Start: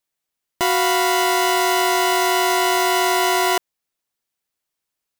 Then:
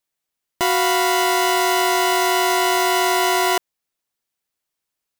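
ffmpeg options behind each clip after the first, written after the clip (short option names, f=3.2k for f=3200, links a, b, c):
-af anull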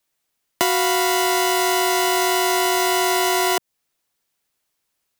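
-filter_complex "[0:a]acrossover=split=160|680|1700|5100[a][b][c][d][e];[a]acompressor=threshold=-56dB:ratio=4[f];[b]acompressor=threshold=-30dB:ratio=4[g];[c]acompressor=threshold=-34dB:ratio=4[h];[d]acompressor=threshold=-34dB:ratio=4[i];[e]acompressor=threshold=-30dB:ratio=4[j];[f][g][h][i][j]amix=inputs=5:normalize=0,volume=7dB"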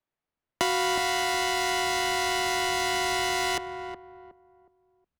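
-filter_complex "[0:a]asplit=2[a][b];[b]adelay=366,lowpass=f=1.2k:p=1,volume=-6.5dB,asplit=2[c][d];[d]adelay=366,lowpass=f=1.2k:p=1,volume=0.32,asplit=2[e][f];[f]adelay=366,lowpass=f=1.2k:p=1,volume=0.32,asplit=2[g][h];[h]adelay=366,lowpass=f=1.2k:p=1,volume=0.32[i];[a][c][e][g][i]amix=inputs=5:normalize=0,adynamicsmooth=sensitivity=5:basefreq=2k,asubboost=boost=4.5:cutoff=210,volume=-5.5dB"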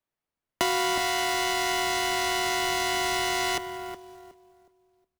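-af "acrusher=bits=3:mode=log:mix=0:aa=0.000001,aecho=1:1:191|382|573|764:0.0708|0.0389|0.0214|0.0118"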